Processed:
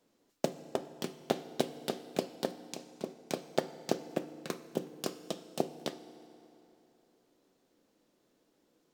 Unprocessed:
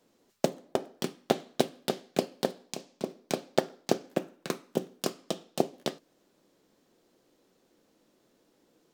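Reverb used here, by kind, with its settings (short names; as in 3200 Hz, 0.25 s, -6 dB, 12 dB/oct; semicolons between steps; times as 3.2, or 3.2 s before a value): FDN reverb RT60 3.1 s, high-frequency decay 0.7×, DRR 12.5 dB; gain -5 dB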